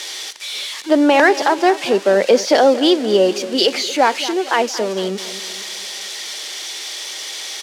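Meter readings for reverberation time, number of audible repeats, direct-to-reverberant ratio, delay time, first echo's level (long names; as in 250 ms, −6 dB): no reverb audible, 4, no reverb audible, 228 ms, −15.5 dB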